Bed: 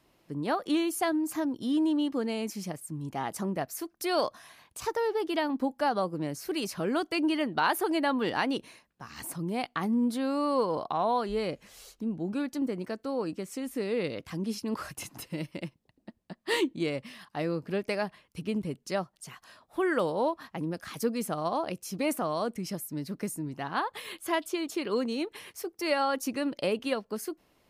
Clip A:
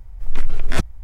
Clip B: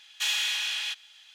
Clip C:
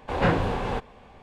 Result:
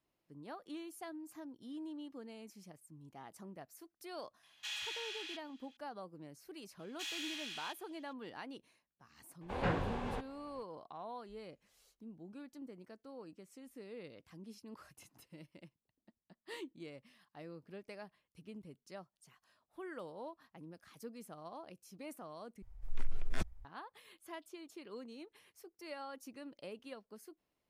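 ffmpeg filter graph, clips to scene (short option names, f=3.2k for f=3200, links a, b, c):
-filter_complex "[2:a]asplit=2[a][b];[0:a]volume=-19dB[c];[a]highshelf=f=7.6k:g=-8.5[d];[c]asplit=2[e][f];[e]atrim=end=22.624[g];[1:a]atrim=end=1.03,asetpts=PTS-STARTPTS,volume=-17dB[h];[f]atrim=start=23.646[i];[d]atrim=end=1.34,asetpts=PTS-STARTPTS,volume=-13.5dB,afade=t=in:d=0.004:c=hsin,afade=t=out:st=1.336:d=0.004:c=hsin,adelay=4430[j];[b]atrim=end=1.34,asetpts=PTS-STARTPTS,volume=-15.5dB,afade=t=in:d=0.004:c=hsin,afade=t=out:st=1.336:d=0.004:c=hsin,adelay=6790[k];[3:a]atrim=end=1.22,asetpts=PTS-STARTPTS,volume=-12dB,afade=t=in:d=0.004:c=hsin,afade=t=out:st=1.216:d=0.004:c=hsin,adelay=9410[l];[g][h]acrossfade=d=0.004:c1=hsin:c2=hsin[m];[m][i]acrossfade=d=0.004:c1=hsin:c2=hsin[n];[n][j][k][l]amix=inputs=4:normalize=0"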